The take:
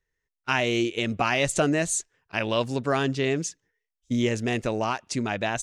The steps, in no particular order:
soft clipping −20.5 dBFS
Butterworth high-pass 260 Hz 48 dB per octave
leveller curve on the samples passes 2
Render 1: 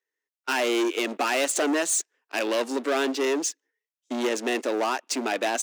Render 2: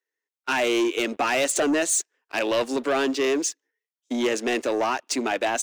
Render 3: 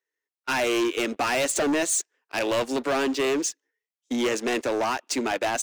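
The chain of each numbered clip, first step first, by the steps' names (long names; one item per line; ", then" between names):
leveller curve on the samples, then soft clipping, then Butterworth high-pass
soft clipping, then Butterworth high-pass, then leveller curve on the samples
Butterworth high-pass, then leveller curve on the samples, then soft clipping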